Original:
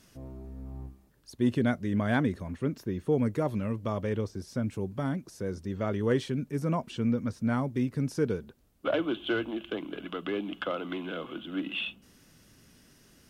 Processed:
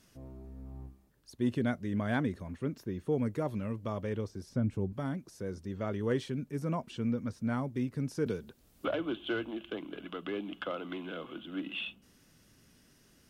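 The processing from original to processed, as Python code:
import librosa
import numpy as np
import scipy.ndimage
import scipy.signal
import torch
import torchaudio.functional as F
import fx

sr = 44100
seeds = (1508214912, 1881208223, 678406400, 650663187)

y = fx.tilt_eq(x, sr, slope=-2.0, at=(4.49, 4.93))
y = fx.band_squash(y, sr, depth_pct=70, at=(8.26, 9.16))
y = F.gain(torch.from_numpy(y), -4.5).numpy()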